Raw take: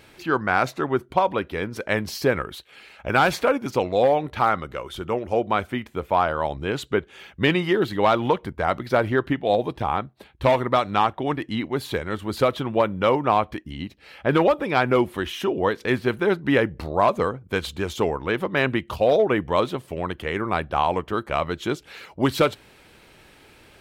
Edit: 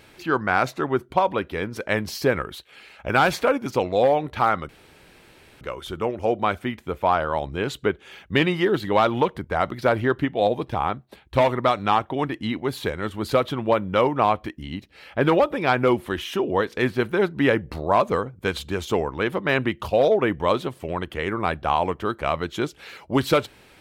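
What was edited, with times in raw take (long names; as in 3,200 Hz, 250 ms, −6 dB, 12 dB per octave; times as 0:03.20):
0:04.69: splice in room tone 0.92 s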